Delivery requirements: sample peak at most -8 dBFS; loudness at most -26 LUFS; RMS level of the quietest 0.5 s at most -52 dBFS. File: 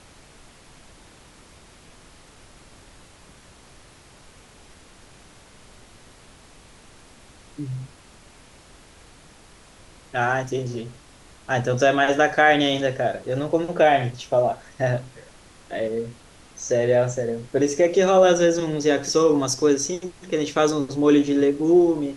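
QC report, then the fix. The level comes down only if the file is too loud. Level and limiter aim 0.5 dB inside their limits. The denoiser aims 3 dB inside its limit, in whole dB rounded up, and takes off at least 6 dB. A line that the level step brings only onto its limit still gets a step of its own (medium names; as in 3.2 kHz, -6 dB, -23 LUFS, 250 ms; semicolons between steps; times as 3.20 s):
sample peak -4.5 dBFS: fail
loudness -21.0 LUFS: fail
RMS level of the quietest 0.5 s -49 dBFS: fail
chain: trim -5.5 dB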